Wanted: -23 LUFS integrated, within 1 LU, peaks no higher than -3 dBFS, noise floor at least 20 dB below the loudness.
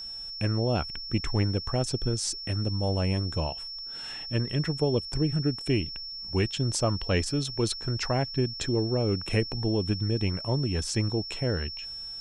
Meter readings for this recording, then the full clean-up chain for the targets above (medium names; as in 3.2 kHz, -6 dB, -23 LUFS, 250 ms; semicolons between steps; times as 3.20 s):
steady tone 5.4 kHz; tone level -36 dBFS; loudness -28.5 LUFS; peak level -11.5 dBFS; loudness target -23.0 LUFS
-> band-stop 5.4 kHz, Q 30; trim +5.5 dB